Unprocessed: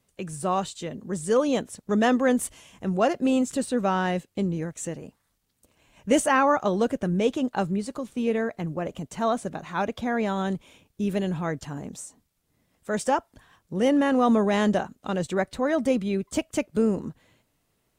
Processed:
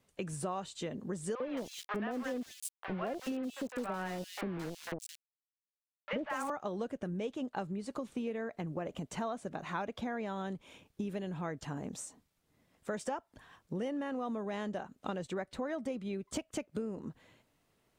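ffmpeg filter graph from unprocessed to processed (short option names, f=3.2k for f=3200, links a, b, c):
-filter_complex "[0:a]asettb=1/sr,asplit=3[a][b][c];[a]atrim=end=1.354[d];[b]atrim=start=1.35:end=6.5,asetpts=PTS-STARTPTS,afade=t=in:d=0.004:c=qsin,afade=t=out:st=5.146:d=0.004:c=qsin,aeval=exprs='val(0)*gte(abs(val(0)),0.0398)':c=same,acrossover=split=770|3100[e][f][g];[e]adelay=50[h];[g]adelay=220[i];[h][f][i]amix=inputs=3:normalize=0,atrim=end_sample=227115[j];[c]atrim=start=6.496[k];[d][j]acrossfade=d=0.004:c1=hsin:c2=qsin[l];[l][k]acrossfade=d=0.004:c1=qsin:c2=hsin,highshelf=f=6k:g=-7.5,acompressor=threshold=-33dB:ratio=12,lowshelf=f=150:g=-5.5"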